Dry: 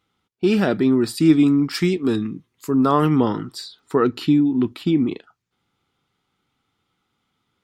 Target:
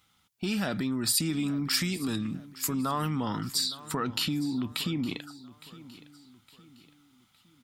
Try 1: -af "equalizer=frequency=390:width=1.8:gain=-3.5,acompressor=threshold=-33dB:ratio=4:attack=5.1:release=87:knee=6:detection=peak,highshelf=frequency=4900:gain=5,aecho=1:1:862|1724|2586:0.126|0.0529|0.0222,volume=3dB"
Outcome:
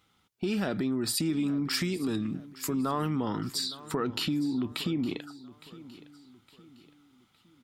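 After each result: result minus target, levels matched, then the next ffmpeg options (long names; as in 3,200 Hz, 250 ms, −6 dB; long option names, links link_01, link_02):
500 Hz band +4.5 dB; 8,000 Hz band −4.5 dB
-af "equalizer=frequency=390:width=1.8:gain=-12.5,acompressor=threshold=-33dB:ratio=4:attack=5.1:release=87:knee=6:detection=peak,highshelf=frequency=4900:gain=5,aecho=1:1:862|1724|2586:0.126|0.0529|0.0222,volume=3dB"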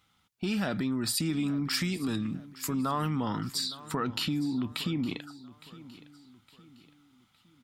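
8,000 Hz band −4.0 dB
-af "equalizer=frequency=390:width=1.8:gain=-12.5,acompressor=threshold=-33dB:ratio=4:attack=5.1:release=87:knee=6:detection=peak,highshelf=frequency=4900:gain=12,aecho=1:1:862|1724|2586:0.126|0.0529|0.0222,volume=3dB"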